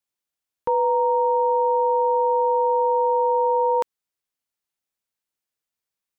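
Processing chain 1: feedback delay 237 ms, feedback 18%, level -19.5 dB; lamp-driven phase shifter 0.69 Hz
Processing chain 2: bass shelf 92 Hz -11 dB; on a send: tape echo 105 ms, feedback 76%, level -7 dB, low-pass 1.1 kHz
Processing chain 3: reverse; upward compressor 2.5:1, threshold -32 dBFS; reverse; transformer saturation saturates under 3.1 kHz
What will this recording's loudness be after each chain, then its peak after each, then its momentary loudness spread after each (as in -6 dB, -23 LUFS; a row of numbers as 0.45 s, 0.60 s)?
-22.5 LUFS, -20.5 LUFS, -25.0 LUFS; -13.0 dBFS, -11.0 dBFS, -11.5 dBFS; 9 LU, 7 LU, 4 LU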